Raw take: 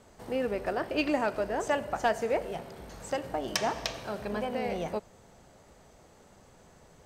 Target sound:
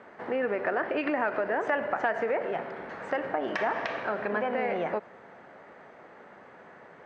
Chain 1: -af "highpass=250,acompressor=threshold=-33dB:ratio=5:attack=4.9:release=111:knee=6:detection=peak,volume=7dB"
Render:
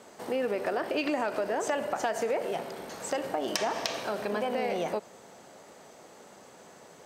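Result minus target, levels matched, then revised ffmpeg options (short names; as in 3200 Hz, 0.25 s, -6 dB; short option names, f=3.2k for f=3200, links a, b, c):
2000 Hz band -4.0 dB
-af "highpass=250,acompressor=threshold=-33dB:ratio=5:attack=4.9:release=111:knee=6:detection=peak,lowpass=f=1.8k:t=q:w=2.2,volume=7dB"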